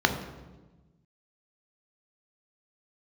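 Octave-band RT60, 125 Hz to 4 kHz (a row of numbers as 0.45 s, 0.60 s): 1.9 s, 1.6 s, 1.3 s, 1.1 s, 0.90 s, 0.85 s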